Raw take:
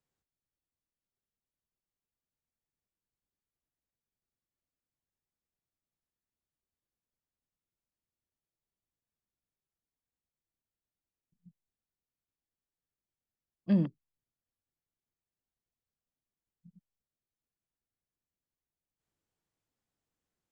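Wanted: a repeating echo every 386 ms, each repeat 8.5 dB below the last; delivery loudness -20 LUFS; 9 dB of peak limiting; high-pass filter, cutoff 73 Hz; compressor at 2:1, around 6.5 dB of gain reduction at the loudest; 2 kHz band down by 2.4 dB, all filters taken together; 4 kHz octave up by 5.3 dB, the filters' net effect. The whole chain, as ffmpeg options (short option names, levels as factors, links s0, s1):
-af "highpass=73,equalizer=f=2000:t=o:g=-5.5,equalizer=f=4000:t=o:g=9,acompressor=threshold=0.0224:ratio=2,alimiter=level_in=2.51:limit=0.0631:level=0:latency=1,volume=0.398,aecho=1:1:386|772|1158|1544:0.376|0.143|0.0543|0.0206,volume=26.6"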